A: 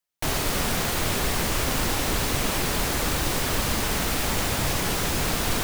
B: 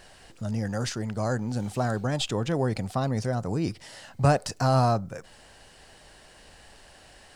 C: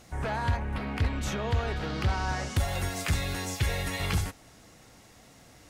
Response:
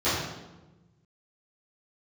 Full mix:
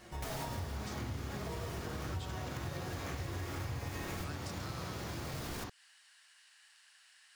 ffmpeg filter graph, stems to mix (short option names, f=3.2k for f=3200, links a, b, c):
-filter_complex "[0:a]alimiter=limit=-23dB:level=0:latency=1,volume=-0.5dB,asplit=2[a][b];[b]volume=-18.5dB[c];[1:a]highpass=f=1.3k:w=0.5412,highpass=f=1.3k:w=1.3066,volume=-8dB,asplit=2[d][e];[2:a]acompressor=threshold=-29dB:ratio=6,flanger=delay=5.3:depth=5:regen=18:speed=0.73:shape=triangular,acrusher=samples=10:mix=1:aa=0.000001,volume=-4.5dB,asplit=2[f][g];[g]volume=-8.5dB[h];[e]apad=whole_len=248686[i];[a][i]sidechaincompress=threshold=-57dB:ratio=8:attack=8.2:release=672[j];[3:a]atrim=start_sample=2205[k];[c][h]amix=inputs=2:normalize=0[l];[l][k]afir=irnorm=-1:irlink=0[m];[j][d][f][m]amix=inputs=4:normalize=0,acompressor=threshold=-39dB:ratio=4"